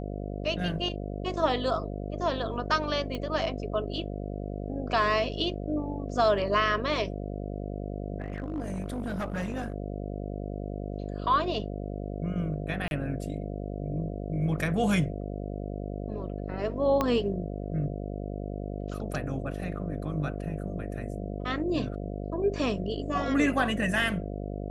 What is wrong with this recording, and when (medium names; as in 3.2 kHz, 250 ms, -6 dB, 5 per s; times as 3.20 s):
buzz 50 Hz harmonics 14 -35 dBFS
3.15 s: pop -21 dBFS
8.20–9.72 s: clipped -27.5 dBFS
12.88–12.91 s: dropout 31 ms
17.01 s: pop -13 dBFS